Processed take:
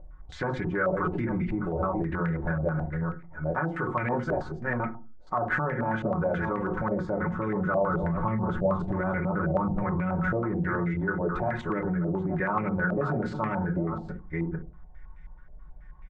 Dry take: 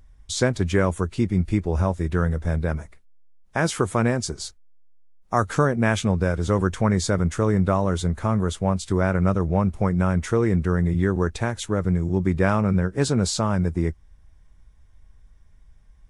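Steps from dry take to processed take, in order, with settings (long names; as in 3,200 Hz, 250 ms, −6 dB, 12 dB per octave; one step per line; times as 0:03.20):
delay that plays each chunk backwards 441 ms, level −10 dB
comb filter 5.4 ms, depth 77%
feedback delay network reverb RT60 0.3 s, low-frequency decay 1.55×, high-frequency decay 0.4×, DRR 3.5 dB
downward compressor 6 to 1, threshold −24 dBFS, peak gain reduction 13.5 dB
0:07.83–0:10.33: low-shelf EQ 180 Hz +8 dB
brickwall limiter −21.5 dBFS, peak gain reduction 10 dB
low-pass on a step sequencer 9.3 Hz 630–2,100 Hz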